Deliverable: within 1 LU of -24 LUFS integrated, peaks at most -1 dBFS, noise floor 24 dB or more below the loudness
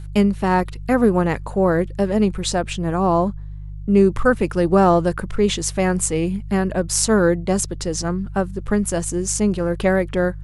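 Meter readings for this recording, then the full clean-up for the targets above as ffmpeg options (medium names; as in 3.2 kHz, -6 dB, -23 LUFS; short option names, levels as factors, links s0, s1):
hum 50 Hz; highest harmonic 150 Hz; hum level -29 dBFS; loudness -19.5 LUFS; peak level -2.5 dBFS; loudness target -24.0 LUFS
-> -af "bandreject=f=50:t=h:w=4,bandreject=f=100:t=h:w=4,bandreject=f=150:t=h:w=4"
-af "volume=0.596"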